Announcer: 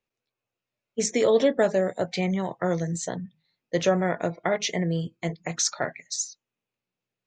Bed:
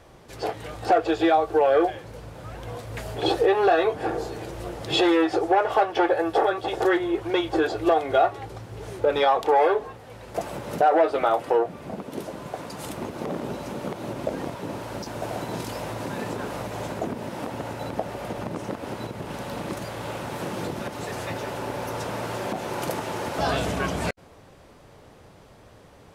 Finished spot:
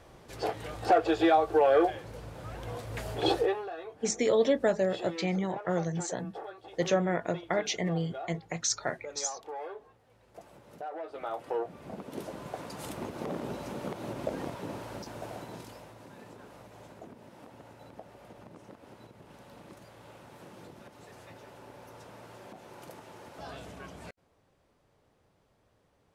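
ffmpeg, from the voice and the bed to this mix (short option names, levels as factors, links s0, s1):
-filter_complex "[0:a]adelay=3050,volume=0.596[s0];[1:a]volume=3.98,afade=t=out:st=3.31:d=0.34:silence=0.133352,afade=t=in:st=11.02:d=1.27:silence=0.16788,afade=t=out:st=14.59:d=1.33:silence=0.211349[s1];[s0][s1]amix=inputs=2:normalize=0"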